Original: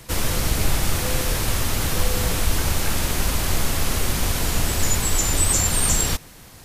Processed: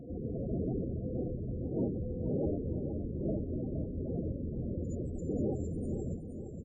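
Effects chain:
lower of the sound and its delayed copy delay 0.42 ms
wind on the microphone 510 Hz −25 dBFS
high-pass filter 270 Hz 6 dB per octave
tilt shelving filter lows +7 dB, about 650 Hz
asymmetric clip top −22.5 dBFS, bottom −14 dBFS
spectral peaks only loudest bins 16
head-to-tape spacing loss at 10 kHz 26 dB
repeating echo 468 ms, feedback 49%, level −8 dB
level −9 dB

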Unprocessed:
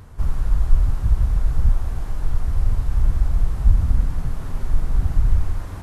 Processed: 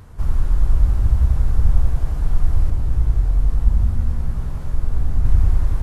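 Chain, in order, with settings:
0:02.70–0:05.25: chorus effect 3 Hz, delay 17 ms, depth 4.8 ms
delay with a low-pass on its return 93 ms, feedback 79%, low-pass 620 Hz, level −3 dB

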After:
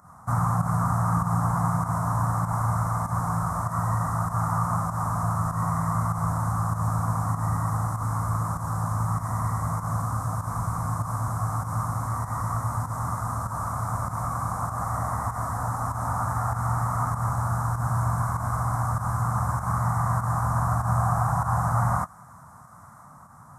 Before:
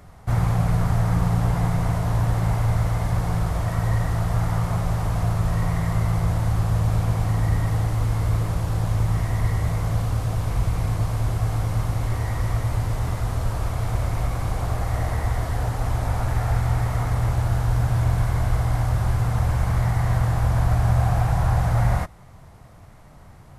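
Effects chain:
drawn EQ curve 250 Hz 0 dB, 370 Hz −16 dB, 1,200 Hz +11 dB, 2,800 Hz −27 dB, 5,800 Hz −3 dB, 8,400 Hz +4 dB, 13,000 Hz −1 dB
fake sidechain pumping 98 BPM, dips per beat 1, −10 dB, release 124 ms
high-pass filter 130 Hz 12 dB per octave
notch filter 4,600 Hz, Q 15
on a send: delay with a high-pass on its return 1,005 ms, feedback 61%, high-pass 1,600 Hz, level −21 dB

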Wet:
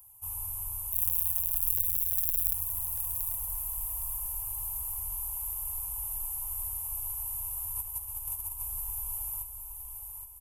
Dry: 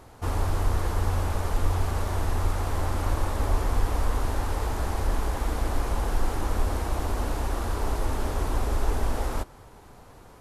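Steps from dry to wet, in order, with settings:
0:00.92–0:02.54: samples sorted by size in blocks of 256 samples
drawn EQ curve 120 Hz 0 dB, 190 Hz −30 dB, 640 Hz −14 dB, 970 Hz −1 dB, 1,700 Hz −28 dB, 2,700 Hz −7 dB, 4,300 Hz −25 dB, 12,000 Hz +14 dB
0:07.73–0:08.60: compressor whose output falls as the input rises −30 dBFS, ratio −1
first-order pre-emphasis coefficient 0.9
repeating echo 818 ms, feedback 39%, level −7 dB

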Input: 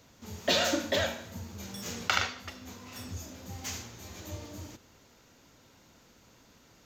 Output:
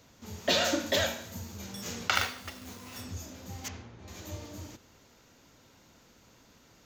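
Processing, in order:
0:00.86–0:01.58: high-shelf EQ 5,200 Hz +8 dB
0:02.15–0:03.01: log-companded quantiser 4 bits
0:03.68–0:04.08: head-to-tape spacing loss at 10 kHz 29 dB

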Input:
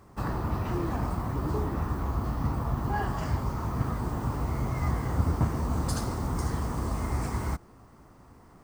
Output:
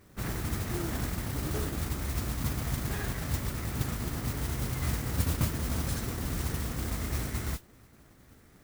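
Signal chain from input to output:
lower of the sound and its delayed copy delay 0.53 ms
noise that follows the level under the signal 10 dB
level −3 dB

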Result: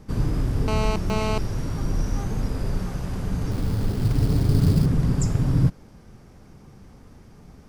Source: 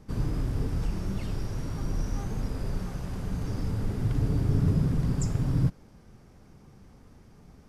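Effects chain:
0:00.68–0:01.38: phone interference −32 dBFS
0:03.51–0:04.86: sample-rate reduction 4,800 Hz, jitter 20%
level +5.5 dB

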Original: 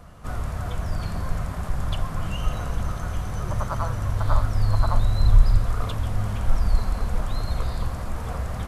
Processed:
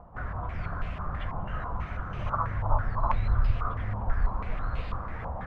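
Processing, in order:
time stretch by phase vocoder 0.63×
low-pass on a step sequencer 6.1 Hz 890–2,700 Hz
level −3.5 dB

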